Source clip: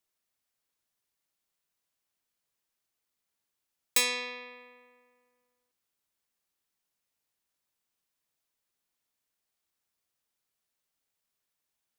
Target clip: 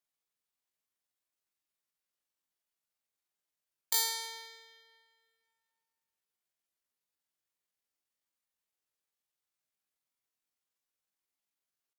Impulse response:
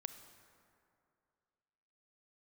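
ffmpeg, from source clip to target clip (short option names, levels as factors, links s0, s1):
-filter_complex "[0:a]asplit=2[s0][s1];[1:a]atrim=start_sample=2205,lowshelf=f=84:g=-10.5[s2];[s1][s2]afir=irnorm=-1:irlink=0,volume=1.33[s3];[s0][s3]amix=inputs=2:normalize=0,asetrate=80880,aresample=44100,atempo=0.545254,volume=0.376"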